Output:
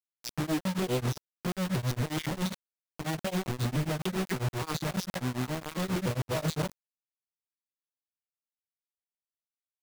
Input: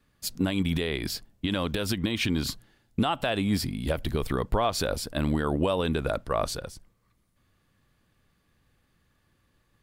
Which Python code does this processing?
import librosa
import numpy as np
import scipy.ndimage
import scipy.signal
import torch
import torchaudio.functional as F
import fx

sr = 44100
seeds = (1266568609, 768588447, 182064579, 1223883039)

y = fx.vocoder_arp(x, sr, chord='major triad', root=47, every_ms=288)
y = fx.over_compress(y, sr, threshold_db=-35.0, ratio=-1.0)
y = fx.phaser_stages(y, sr, stages=12, low_hz=440.0, high_hz=1800.0, hz=0.34, feedback_pct=5)
y = fx.vibrato(y, sr, rate_hz=6.5, depth_cents=51.0)
y = fx.quant_companded(y, sr, bits=2)
y = y * np.abs(np.cos(np.pi * 7.4 * np.arange(len(y)) / sr))